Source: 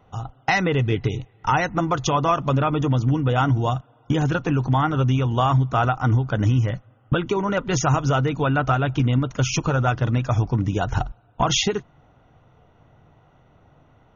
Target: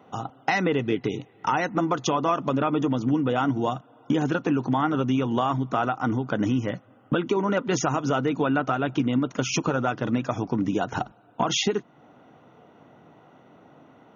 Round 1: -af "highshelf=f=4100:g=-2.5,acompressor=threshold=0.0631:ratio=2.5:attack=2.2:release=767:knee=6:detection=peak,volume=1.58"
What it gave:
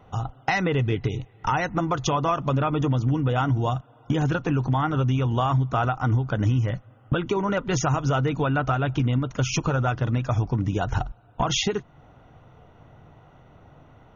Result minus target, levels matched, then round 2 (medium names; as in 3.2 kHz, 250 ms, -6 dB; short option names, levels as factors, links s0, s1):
250 Hz band -3.5 dB
-af "highpass=f=240:t=q:w=1.6,highshelf=f=4100:g=-2.5,acompressor=threshold=0.0631:ratio=2.5:attack=2.2:release=767:knee=6:detection=peak,volume=1.58"